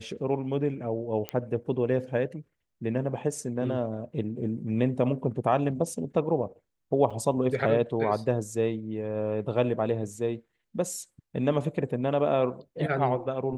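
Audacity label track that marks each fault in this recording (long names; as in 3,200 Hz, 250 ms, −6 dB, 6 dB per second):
1.290000	1.290000	click −16 dBFS
7.100000	7.110000	drop-out 5.7 ms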